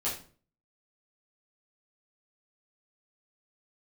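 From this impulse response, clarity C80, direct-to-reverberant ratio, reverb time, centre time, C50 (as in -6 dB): 11.5 dB, -8.5 dB, 0.45 s, 30 ms, 6.5 dB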